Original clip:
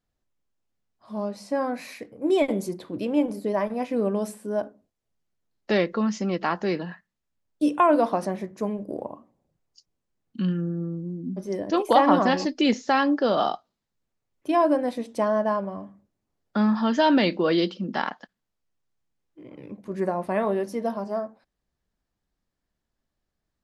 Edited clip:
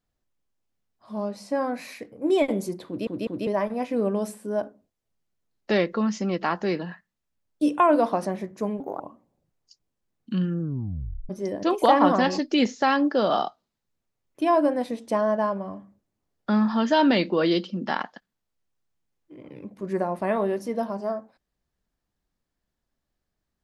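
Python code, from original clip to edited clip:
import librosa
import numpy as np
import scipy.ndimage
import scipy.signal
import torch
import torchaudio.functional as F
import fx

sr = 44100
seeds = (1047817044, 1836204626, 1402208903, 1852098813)

y = fx.edit(x, sr, fx.stutter_over(start_s=2.87, slice_s=0.2, count=3),
    fx.speed_span(start_s=8.8, length_s=0.27, speed=1.35),
    fx.tape_stop(start_s=10.67, length_s=0.69), tone=tone)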